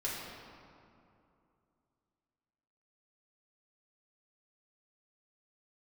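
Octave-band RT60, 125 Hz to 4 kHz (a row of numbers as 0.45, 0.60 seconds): 3.0, 3.0, 2.7, 2.6, 1.9, 1.4 seconds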